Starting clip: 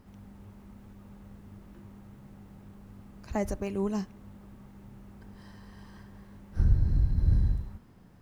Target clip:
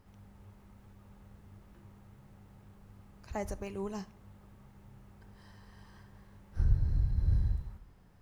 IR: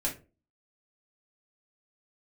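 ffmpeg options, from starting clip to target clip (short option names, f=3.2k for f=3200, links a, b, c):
-filter_complex "[0:a]equalizer=f=250:w=1.1:g=-6.5,asplit=2[a][b];[1:a]atrim=start_sample=2205,asetrate=22932,aresample=44100[c];[b][c]afir=irnorm=-1:irlink=0,volume=-23.5dB[d];[a][d]amix=inputs=2:normalize=0,volume=-4.5dB"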